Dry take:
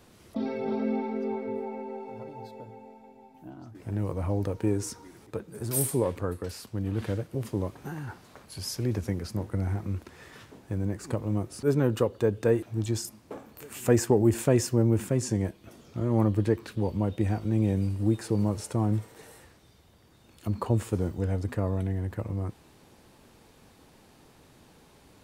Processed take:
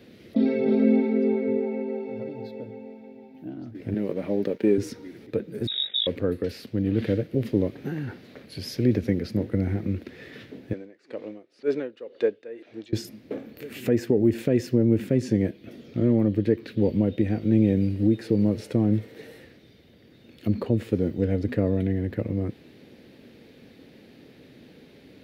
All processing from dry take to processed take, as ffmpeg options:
-filter_complex "[0:a]asettb=1/sr,asplit=3[a][b][c];[a]atrim=end=3.944[d];[b]atrim=start=3.94:end=4.78,asetpts=PTS-STARTPTS,afade=t=in:d=0.004:c=qsin,afade=t=out:st=0.836:d=0.004:c=qsin,highpass=220,aecho=1:1:5.1:0.38,atrim=end_sample=37044,aeval=exprs='sgn(val(0))*max(abs(val(0))-0.00188,0)':c=same[e];[c]atrim=start=4.776[f];[d][e]acrossfade=d=0.004:c1=hsin:c2=qsin[g];[g][f]acrossfade=d=0.004:c1=qsin:c2=hsin,asettb=1/sr,asplit=3[h][i][j];[h]atrim=end=5.674[k];[i]atrim=start=5.67:end=6.07,asetpts=PTS-STARTPTS,afade=t=in:d=0.004:c=qsin,afade=t=out:st=0.396:d=0.004:c=qsin,equalizer=f=1k:w=1.8:g=-14.5,aeval=exprs='val(0)*sin(2*PI*25*n/s)':c=same,lowpass=f=3.3k:t=q:w=0.5098,lowpass=f=3.3k:t=q:w=0.6013,lowpass=f=3.3k:t=q:w=0.9,lowpass=f=3.3k:t=q:w=2.563,afreqshift=-3900[l];[j]atrim=start=6.066[m];[k][l]acrossfade=d=0.004:c1=hsin:c2=qsin[n];[n][m]acrossfade=d=0.004:c1=qsin:c2=hsin,asettb=1/sr,asplit=3[o][p][q];[o]atrim=end=10.734[r];[p]atrim=start=10.73:end=12.93,asetpts=PTS-STARTPTS,afade=t=in:d=0.004:c=qsin,afade=t=out:st=2.196:d=0.004:c=qsin,highpass=530,lowpass=6.3k,aeval=exprs='val(0)*pow(10,-19*(0.5-0.5*cos(2*PI*2*n/s))/20)':c=same[s];[q]atrim=start=12.926[t];[r][s]acrossfade=d=0.004:c1=hsin:c2=qsin[u];[u][t]acrossfade=d=0.004:c1=qsin:c2=hsin,highpass=f=63:p=1,alimiter=limit=-18.5dB:level=0:latency=1:release=377,equalizer=f=125:t=o:w=1:g=4,equalizer=f=250:t=o:w=1:g=10,equalizer=f=500:t=o:w=1:g=9,equalizer=f=1k:t=o:w=1:g=-11,equalizer=f=2k:t=o:w=1:g=9,equalizer=f=4k:t=o:w=1:g=7,equalizer=f=8k:t=o:w=1:g=-12,volume=-1dB"

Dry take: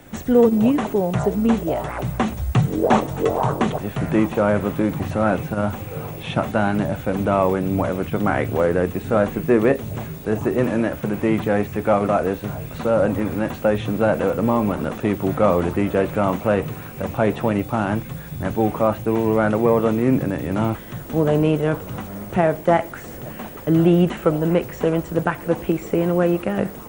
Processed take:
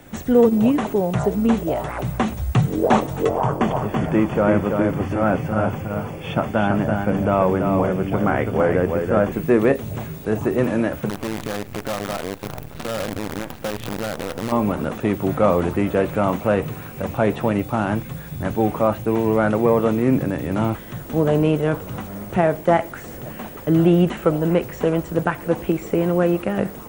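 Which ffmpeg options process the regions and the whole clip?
-filter_complex "[0:a]asettb=1/sr,asplit=3[a][b][c];[a]atrim=end=3.294[d];[b]atrim=start=3.29:end=9.32,asetpts=PTS-STARTPTS,afade=t=in:d=0.004:c=qsin,afade=t=out:st=6.026:d=0.004:c=qsin,asuperstop=centerf=3900:order=20:qfactor=5.4,highshelf=f=4.9k:g=-7.5,aecho=1:1:332:0.562,atrim=end_sample=265923[e];[c]atrim=start=9.316[f];[d][e]acrossfade=d=0.004:c1=hsin:c2=qsin[g];[g][f]acrossfade=d=0.004:c1=qsin:c2=hsin,asettb=1/sr,asplit=3[h][i][j];[h]atrim=end=11.094[k];[i]atrim=start=11.09:end=14.52,asetpts=PTS-STARTPTS,afade=t=in:d=0.004:c=qsin,afade=t=out:st=3.426:d=0.004:c=qsin,highshelf=f=5.4k:g=-10,acompressor=threshold=-26dB:ratio=3:attack=3.2:release=140:knee=1:detection=peak,acrusher=bits=5:dc=4:mix=0:aa=0.000001[l];[j]atrim=start=14.516[m];[k][l]acrossfade=d=0.004:c1=hsin:c2=qsin[n];[n][m]acrossfade=d=0.004:c1=qsin:c2=hsin"

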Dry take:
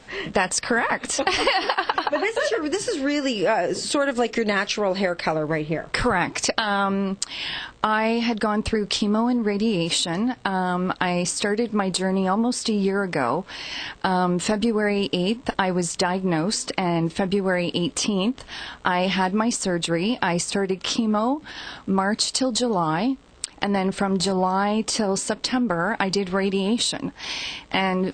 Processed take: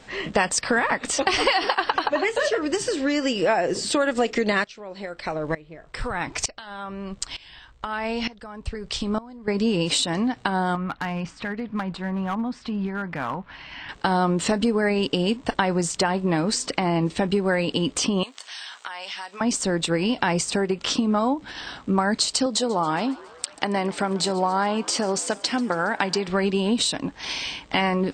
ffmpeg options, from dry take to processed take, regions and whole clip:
-filter_complex "[0:a]asettb=1/sr,asplit=3[a][b][c];[a]atrim=end=4.644[d];[b]atrim=start=4.64:end=9.48,asetpts=PTS-STARTPTS,afade=t=in:d=0.004:c=qsin,afade=t=out:st=4.836:d=0.004:c=qsin,asubboost=boost=7:cutoff=90,aeval=exprs='val(0)*pow(10,-20*if(lt(mod(-1.1*n/s,1),2*abs(-1.1)/1000),1-mod(-1.1*n/s,1)/(2*abs(-1.1)/1000),(mod(-1.1*n/s,1)-2*abs(-1.1)/1000)/(1-2*abs(-1.1)/1000))/20)':c=same[e];[c]atrim=start=9.476[f];[d][e]acrossfade=d=0.004:c1=hsin:c2=qsin[g];[g][f]acrossfade=d=0.004:c1=qsin:c2=hsin,asettb=1/sr,asplit=3[h][i][j];[h]atrim=end=10.754[k];[i]atrim=start=10.75:end=13.89,asetpts=PTS-STARTPTS,afade=t=in:d=0.004:c=qsin,afade=t=out:st=3.136:d=0.004:c=qsin,lowpass=1.9k,equalizer=f=440:w=0.98:g=-12.5,asoftclip=type=hard:threshold=-21dB[l];[j]atrim=start=13.886[m];[k][l]acrossfade=d=0.004:c1=hsin:c2=qsin[n];[n][m]acrossfade=d=0.004:c1=qsin:c2=hsin,asettb=1/sr,asplit=3[o][p][q];[o]atrim=end=18.234[r];[p]atrim=start=18.23:end=19.41,asetpts=PTS-STARTPTS,afade=t=in:d=0.004:c=qsin,afade=t=out:st=1.176:d=0.004:c=qsin,highpass=840,highshelf=f=3.8k:g=11.5,acompressor=threshold=-36dB:ratio=2.5:attack=3.2:release=140:knee=1:detection=peak[s];[q]atrim=start=19.406[t];[r][s]acrossfade=d=0.004:c1=hsin:c2=qsin[u];[u][t]acrossfade=d=0.004:c1=qsin:c2=hsin,asettb=1/sr,asplit=3[v][w][x];[v]atrim=end=22.464[y];[w]atrim=start=22.46:end=26.28,asetpts=PTS-STARTPTS,afade=t=in:d=0.004:c=qsin,afade=t=out:st=3.816:d=0.004:c=qsin,highpass=f=250:p=1,asplit=7[z][aa][ab][ac][ad][ae][af];[aa]adelay=138,afreqshift=110,volume=-20.5dB[ag];[ab]adelay=276,afreqshift=220,volume=-24.4dB[ah];[ac]adelay=414,afreqshift=330,volume=-28.3dB[ai];[ad]adelay=552,afreqshift=440,volume=-32.1dB[aj];[ae]adelay=690,afreqshift=550,volume=-36dB[ak];[af]adelay=828,afreqshift=660,volume=-39.9dB[al];[z][ag][ah][ai][aj][ak][al]amix=inputs=7:normalize=0,atrim=end_sample=168462[am];[x]atrim=start=26.276[an];[y][am]acrossfade=d=0.004:c1=hsin:c2=qsin[ao];[ao][an]acrossfade=d=0.004:c1=qsin:c2=hsin"

